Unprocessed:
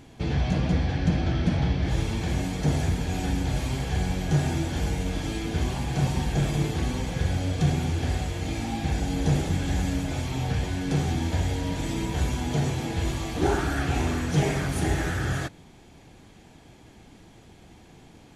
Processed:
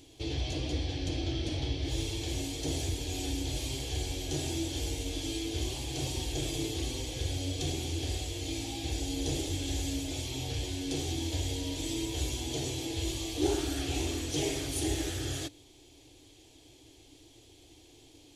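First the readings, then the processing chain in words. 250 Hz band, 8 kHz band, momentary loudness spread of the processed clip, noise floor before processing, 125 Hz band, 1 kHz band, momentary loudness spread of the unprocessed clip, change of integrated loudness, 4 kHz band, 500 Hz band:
−7.5 dB, +2.0 dB, 3 LU, −51 dBFS, −10.5 dB, −12.0 dB, 5 LU, −7.0 dB, +1.5 dB, −5.0 dB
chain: drawn EQ curve 120 Hz 0 dB, 200 Hz −24 dB, 290 Hz +7 dB, 1,500 Hz −10 dB, 3,200 Hz +10 dB
level −8 dB

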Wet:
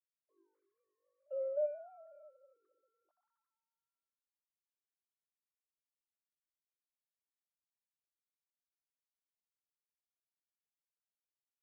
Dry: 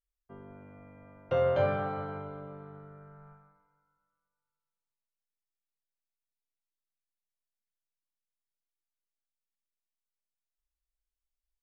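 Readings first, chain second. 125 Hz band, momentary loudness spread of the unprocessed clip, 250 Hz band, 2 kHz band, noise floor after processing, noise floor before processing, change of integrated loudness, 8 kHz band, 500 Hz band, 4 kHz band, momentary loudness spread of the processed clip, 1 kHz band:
below −40 dB, 23 LU, below −40 dB, below −30 dB, below −85 dBFS, below −85 dBFS, −7.5 dB, can't be measured, −9.0 dB, below −25 dB, 21 LU, −25.5 dB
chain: three sine waves on the formant tracks
pair of resonant band-passes 440 Hz, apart 0.91 octaves
level −5 dB

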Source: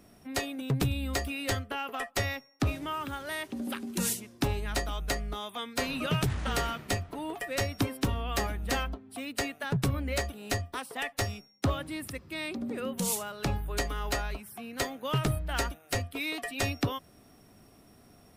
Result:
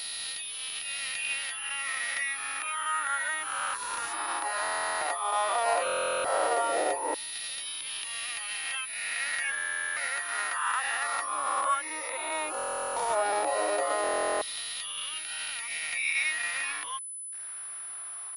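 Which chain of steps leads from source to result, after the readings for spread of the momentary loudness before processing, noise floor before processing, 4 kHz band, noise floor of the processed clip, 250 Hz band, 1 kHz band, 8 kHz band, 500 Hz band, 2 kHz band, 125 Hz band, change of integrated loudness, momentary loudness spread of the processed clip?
6 LU, −58 dBFS, +2.0 dB, −40 dBFS, −15.0 dB, +7.0 dB, +6.0 dB, +3.0 dB, +5.5 dB, below −30 dB, +2.5 dB, 7 LU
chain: peak hold with a rise ahead of every peak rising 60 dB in 2.61 s
reverb reduction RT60 0.81 s
noise gate with hold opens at −51 dBFS
parametric band 310 Hz +12 dB 0.25 octaves
harmonic and percussive parts rebalanced percussive −7 dB
graphic EQ with 10 bands 125 Hz −6 dB, 250 Hz −7 dB, 500 Hz +7 dB, 1,000 Hz +8 dB
in parallel at +2.5 dB: downward compressor 12 to 1, threshold −40 dBFS, peak gain reduction 20.5 dB
on the sum: brickwall limiter −18 dBFS, peak gain reduction 7 dB
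bit reduction 8 bits
auto-filter high-pass saw down 0.14 Hz 480–3,800 Hz
buffer that repeats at 0:04.62/0:05.85/0:09.57/0:12.57/0:14.02, samples 1,024, times 16
switching amplifier with a slow clock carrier 10,000 Hz
level −3 dB

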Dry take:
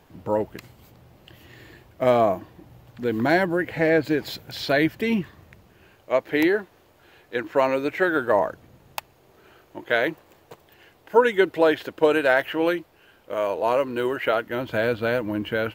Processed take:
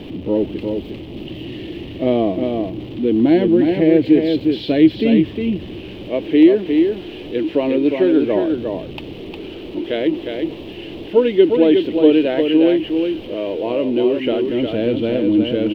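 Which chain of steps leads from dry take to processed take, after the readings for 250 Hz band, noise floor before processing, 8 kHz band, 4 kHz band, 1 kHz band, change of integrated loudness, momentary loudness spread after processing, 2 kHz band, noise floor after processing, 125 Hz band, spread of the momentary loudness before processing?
+13.0 dB, −57 dBFS, can't be measured, +5.5 dB, −5.5 dB, +6.0 dB, 17 LU, −6.5 dB, −33 dBFS, +6.5 dB, 12 LU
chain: converter with a step at zero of −30.5 dBFS
drawn EQ curve 140 Hz 0 dB, 310 Hz +11 dB, 740 Hz −7 dB, 1,500 Hz −17 dB, 3,000 Hz +4 dB, 6,700 Hz −25 dB
single-tap delay 357 ms −5 dB
level +1 dB

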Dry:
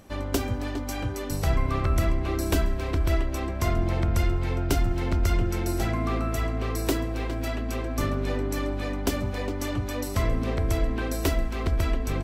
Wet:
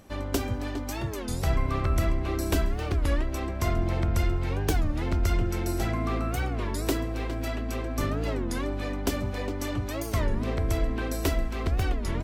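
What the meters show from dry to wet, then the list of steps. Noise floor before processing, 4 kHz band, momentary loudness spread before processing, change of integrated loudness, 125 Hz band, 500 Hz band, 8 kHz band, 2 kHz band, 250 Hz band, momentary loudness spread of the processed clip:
−31 dBFS, −1.5 dB, 5 LU, −1.5 dB, −1.5 dB, −1.5 dB, −1.5 dB, −1.5 dB, −1.5 dB, 5 LU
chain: wow of a warped record 33 1/3 rpm, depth 250 cents
level −1.5 dB

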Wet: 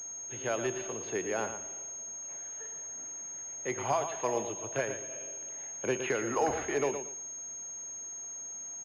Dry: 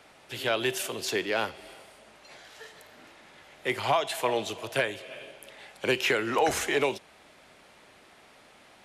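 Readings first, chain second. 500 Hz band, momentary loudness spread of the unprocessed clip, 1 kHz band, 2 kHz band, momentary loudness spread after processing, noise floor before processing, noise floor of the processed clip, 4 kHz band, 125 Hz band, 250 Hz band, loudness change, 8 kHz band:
−3.5 dB, 21 LU, −4.5 dB, −8.5 dB, 8 LU, −56 dBFS, −42 dBFS, −15.5 dB, −3.0 dB, −3.0 dB, −6.0 dB, +7.5 dB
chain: high-shelf EQ 2,400 Hz −11.5 dB
repeating echo 115 ms, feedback 23%, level −9 dB
switching amplifier with a slow clock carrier 6,500 Hz
level −3.5 dB

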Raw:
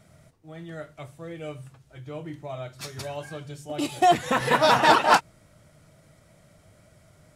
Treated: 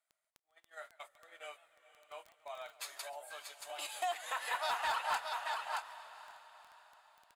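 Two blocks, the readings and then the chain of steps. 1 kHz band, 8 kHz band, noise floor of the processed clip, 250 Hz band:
−15.0 dB, −9.5 dB, below −85 dBFS, below −35 dB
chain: high-pass filter 760 Hz 24 dB per octave
single-tap delay 624 ms −8 dB
noise gate −46 dBFS, range −23 dB
in parallel at −7 dB: wave folding −14.5 dBFS
on the sum: high-shelf EQ 9,400 Hz +5.5 dB
notch filter 5,600 Hz, Q 5.2
surface crackle 10 per second −36 dBFS
downward compressor 2 to 1, threshold −36 dBFS, peak gain reduction 13 dB
on a send: feedback delay with all-pass diffusion 495 ms, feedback 49%, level −15 dB
on the sum: gain on a spectral selection 0:03.09–0:03.30, 990–7,300 Hz −16 dB
feedback echo with a swinging delay time 143 ms, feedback 57%, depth 198 cents, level −20.5 dB
level −6.5 dB

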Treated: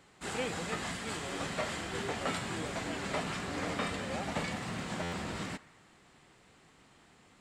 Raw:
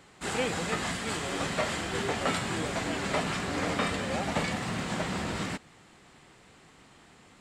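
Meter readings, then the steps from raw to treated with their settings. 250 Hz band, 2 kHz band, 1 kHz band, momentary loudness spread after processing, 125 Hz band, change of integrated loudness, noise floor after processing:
−5.5 dB, −5.5 dB, −5.5 dB, 3 LU, −5.5 dB, −5.5 dB, −62 dBFS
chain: on a send: feedback echo with a band-pass in the loop 82 ms, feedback 72%, band-pass 1,400 Hz, level −19 dB
on the sum: buffer that repeats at 0:05.02, samples 512, times 8
level −5.5 dB

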